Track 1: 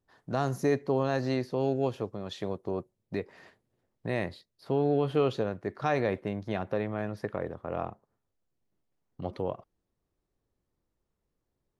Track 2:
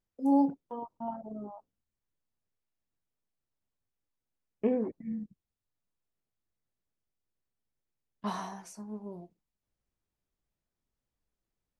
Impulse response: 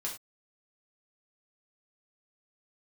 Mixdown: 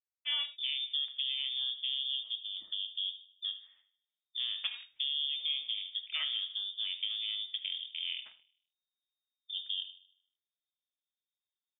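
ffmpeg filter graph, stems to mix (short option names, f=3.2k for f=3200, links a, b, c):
-filter_complex "[0:a]afwtdn=0.0224,adelay=300,volume=-5.5dB,asplit=3[a][b][c];[b]volume=-5dB[d];[c]volume=-14dB[e];[1:a]highpass=f=250:p=1,acrusher=bits=3:mix=0:aa=0.5,volume=-4.5dB,asplit=2[f][g];[g]volume=-5dB[h];[2:a]atrim=start_sample=2205[i];[d][h]amix=inputs=2:normalize=0[j];[j][i]afir=irnorm=-1:irlink=0[k];[e]aecho=0:1:76|152|228|304|380|456|532:1|0.47|0.221|0.104|0.0488|0.0229|0.0108[l];[a][f][k][l]amix=inputs=4:normalize=0,lowpass=f=3.1k:t=q:w=0.5098,lowpass=f=3.1k:t=q:w=0.6013,lowpass=f=3.1k:t=q:w=0.9,lowpass=f=3.1k:t=q:w=2.563,afreqshift=-3700,acompressor=threshold=-32dB:ratio=4"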